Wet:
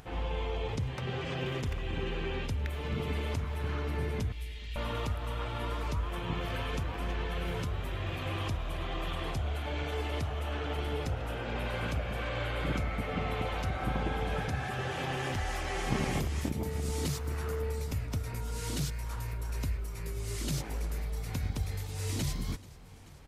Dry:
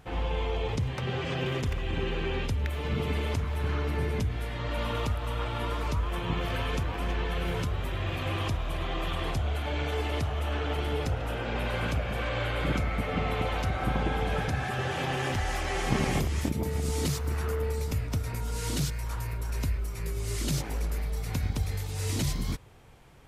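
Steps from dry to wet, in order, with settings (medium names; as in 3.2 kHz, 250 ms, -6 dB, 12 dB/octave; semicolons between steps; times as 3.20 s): 4.32–4.76 s: inverse Chebyshev band-stop 130–1200 Hz, stop band 40 dB; feedback delay 435 ms, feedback 58%, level -21 dB; upward compressor, threshold -42 dBFS; trim -4 dB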